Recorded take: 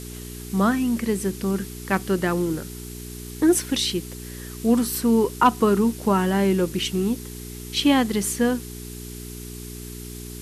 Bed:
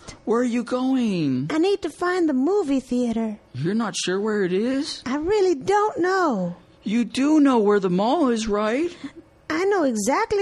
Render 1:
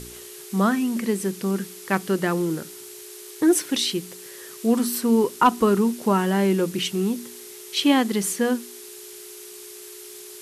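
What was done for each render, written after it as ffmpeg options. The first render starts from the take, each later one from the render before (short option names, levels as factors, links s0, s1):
-af "bandreject=f=60:t=h:w=4,bandreject=f=120:t=h:w=4,bandreject=f=180:t=h:w=4,bandreject=f=240:t=h:w=4,bandreject=f=300:t=h:w=4"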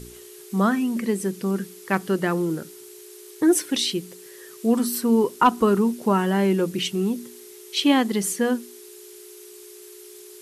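-af "afftdn=nr=6:nf=-41"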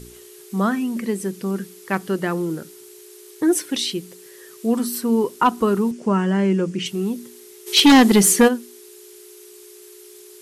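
-filter_complex "[0:a]asettb=1/sr,asplit=3[s0][s1][s2];[s0]atrim=end=5.914[s3];[s1]atrim=start=5.91:end=6.86,asetpts=PTS-STARTPTS,afade=t=in:d=0.004:c=qsin,afade=t=out:st=0.946:d=0.004:c=qsin,highpass=120,equalizer=f=180:t=q:w=4:g=5,equalizer=f=810:t=q:w=4:g=-5,equalizer=f=3900:t=q:w=4:g=-9,lowpass=f=8100:w=0.5412,lowpass=f=8100:w=1.3066[s4];[s2]atrim=start=6.856[s5];[s3][s4]acrossfade=d=0.004:c1=hsin:c2=qsin[s6];[s6][s5]acrossfade=d=0.004:c1=qsin:c2=hsin,asplit=3[s7][s8][s9];[s7]afade=t=out:st=7.66:d=0.02[s10];[s8]aeval=exprs='0.447*sin(PI/2*2.51*val(0)/0.447)':c=same,afade=t=in:st=7.66:d=0.02,afade=t=out:st=8.47:d=0.02[s11];[s9]afade=t=in:st=8.47:d=0.02[s12];[s10][s11][s12]amix=inputs=3:normalize=0"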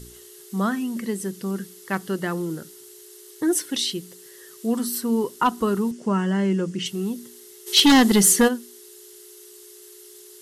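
-af "equalizer=f=510:w=0.34:g=-4.5,bandreject=f=2400:w=6.8"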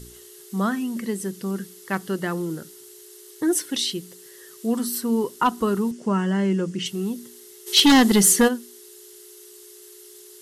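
-af anull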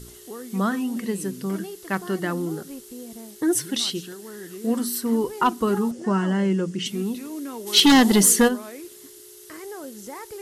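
-filter_complex "[1:a]volume=0.141[s0];[0:a][s0]amix=inputs=2:normalize=0"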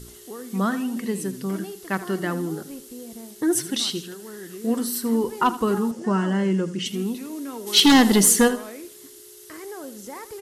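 -af "aecho=1:1:79|158|237:0.178|0.064|0.023"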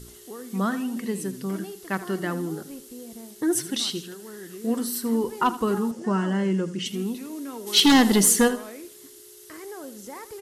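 -af "volume=0.794"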